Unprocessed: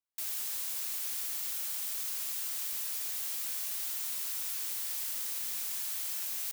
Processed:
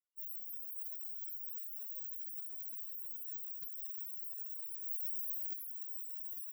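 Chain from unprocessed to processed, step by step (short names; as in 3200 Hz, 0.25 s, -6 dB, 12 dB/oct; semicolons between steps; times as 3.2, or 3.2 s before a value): 4.84–5.53 tilt shelf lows -5 dB, about 1100 Hz; loudest bins only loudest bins 4; gain +10.5 dB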